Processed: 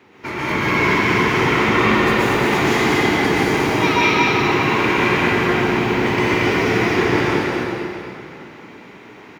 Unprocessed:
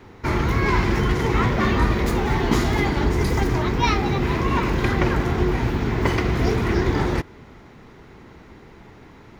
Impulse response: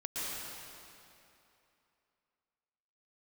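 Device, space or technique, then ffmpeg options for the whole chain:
stadium PA: -filter_complex "[0:a]highpass=180,equalizer=f=2500:t=o:w=0.75:g=7,aecho=1:1:227.4|259.5:0.631|0.251[s0];[1:a]atrim=start_sample=2205[s1];[s0][s1]afir=irnorm=-1:irlink=0"

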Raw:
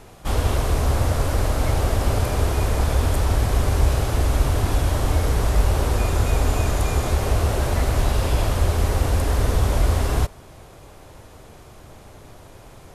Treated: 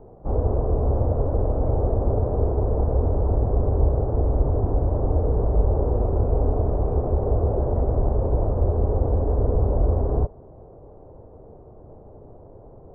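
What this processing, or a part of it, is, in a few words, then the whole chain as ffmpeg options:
under water: -af "lowpass=f=820:w=0.5412,lowpass=f=820:w=1.3066,equalizer=f=450:t=o:w=0.6:g=6,volume=0.841"

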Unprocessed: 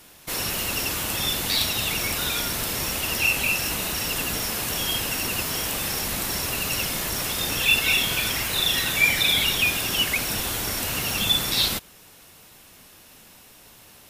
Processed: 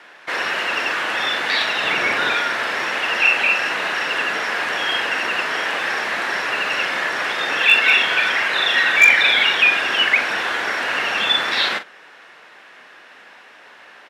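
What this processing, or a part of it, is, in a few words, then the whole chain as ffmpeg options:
megaphone: -filter_complex "[0:a]asettb=1/sr,asplit=3[s0][s1][s2];[s0]atrim=end=1.834[s3];[s1]atrim=start=1.83:end=2.35,asetpts=PTS-STARTPTS,afade=t=in:d=0.004:c=qsin,afade=t=out:st=0.516:d=0.004:c=qsin,lowshelf=f=400:g=8[s4];[s2]atrim=start=2.346[s5];[s3][s4]acrossfade=d=0.004:c1=hsin:c2=qsin[s6];[s6][s5]acrossfade=d=0.004:c1=qsin:c2=hsin,highpass=490,lowpass=2500,equalizer=f=1700:t=o:w=0.6:g=9,asoftclip=type=hard:threshold=0.224,asplit=2[s7][s8];[s8]adelay=43,volume=0.299[s9];[s7][s9]amix=inputs=2:normalize=0,volume=2.66"

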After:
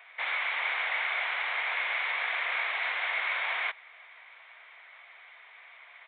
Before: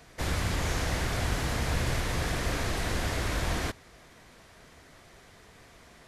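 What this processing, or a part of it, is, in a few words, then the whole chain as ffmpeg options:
musical greeting card: -af "aresample=8000,aresample=44100,highpass=f=780:w=0.5412,highpass=f=780:w=1.3066,equalizer=f=2200:t=o:w=0.27:g=12,volume=1.26"

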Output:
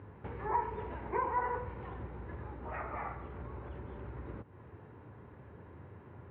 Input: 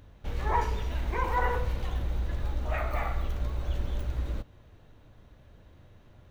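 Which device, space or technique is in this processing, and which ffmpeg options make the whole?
bass amplifier: -filter_complex "[0:a]acompressor=threshold=0.00891:ratio=3,highpass=f=83:w=0.5412,highpass=f=83:w=1.3066,equalizer=f=400:t=q:w=4:g=7,equalizer=f=630:t=q:w=4:g=-6,equalizer=f=940:t=q:w=4:g=6,lowpass=f=2100:w=0.5412,lowpass=f=2100:w=1.3066,asettb=1/sr,asplit=3[s0][s1][s2];[s0]atrim=end=0.784[s3];[s1]atrim=start=0.78:end=1.29,asetpts=PTS-STARTPTS,afade=t=in:d=0.004:c=qsin,afade=t=out:st=0.506:d=0.004:c=qsin,equalizer=f=590:w=1.1:g=4.5[s4];[s2]atrim=start=1.286[s5];[s3][s4]acrossfade=d=0.004:c1=hsin:c2=qsin[s6];[s6][s5]acrossfade=d=0.004:c1=qsin:c2=hsin,volume=1.78"

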